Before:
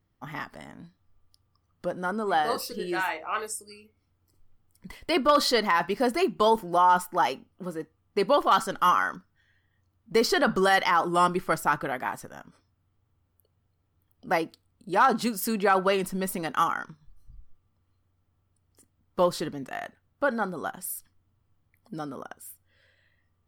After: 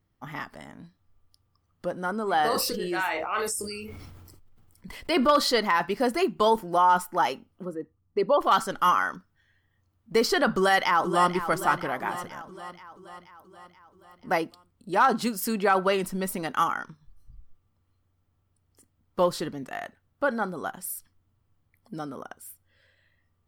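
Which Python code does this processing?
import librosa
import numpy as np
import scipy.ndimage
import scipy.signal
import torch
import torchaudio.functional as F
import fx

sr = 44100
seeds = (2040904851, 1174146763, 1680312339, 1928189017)

y = fx.sustainer(x, sr, db_per_s=26.0, at=(2.24, 5.27))
y = fx.envelope_sharpen(y, sr, power=1.5, at=(7.63, 8.4), fade=0.02)
y = fx.echo_throw(y, sr, start_s=10.51, length_s=0.83, ms=480, feedback_pct=60, wet_db=-11.0)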